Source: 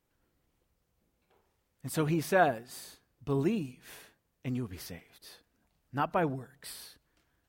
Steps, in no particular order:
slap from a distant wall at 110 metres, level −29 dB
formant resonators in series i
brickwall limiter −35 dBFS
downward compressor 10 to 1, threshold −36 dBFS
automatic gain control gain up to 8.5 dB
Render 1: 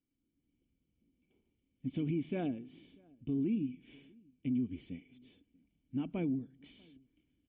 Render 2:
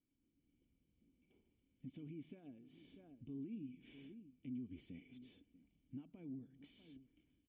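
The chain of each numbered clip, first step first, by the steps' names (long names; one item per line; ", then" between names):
formant resonators in series, then downward compressor, then slap from a distant wall, then brickwall limiter, then automatic gain control
automatic gain control, then slap from a distant wall, then downward compressor, then brickwall limiter, then formant resonators in series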